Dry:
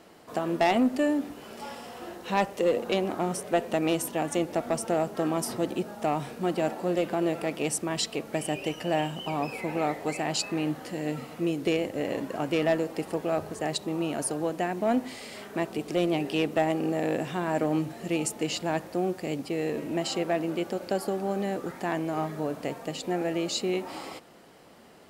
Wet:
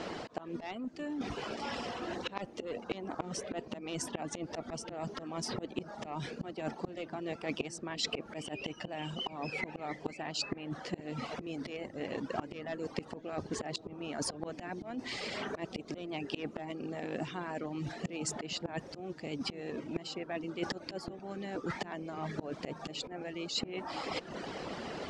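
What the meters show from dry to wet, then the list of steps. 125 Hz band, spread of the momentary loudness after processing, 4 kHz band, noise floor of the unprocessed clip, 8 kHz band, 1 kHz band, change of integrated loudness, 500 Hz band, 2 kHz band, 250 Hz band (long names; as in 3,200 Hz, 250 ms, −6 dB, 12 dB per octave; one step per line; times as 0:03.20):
−8.5 dB, 4 LU, −4.0 dB, −46 dBFS, −8.5 dB, −10.5 dB, −10.5 dB, −12.0 dB, −7.0 dB, −11.0 dB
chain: low-pass filter 6,200 Hz 24 dB per octave
reverb reduction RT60 0.57 s
volume swells 644 ms
dynamic equaliser 580 Hz, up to −4 dB, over −45 dBFS, Q 1.5
reversed playback
downward compressor 8 to 1, threshold −50 dBFS, peak gain reduction 24 dB
reversed playback
harmonic and percussive parts rebalanced percussive +5 dB
on a send: delay with a low-pass on its return 471 ms, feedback 63%, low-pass 400 Hz, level −12.5 dB
on the sum: level +12 dB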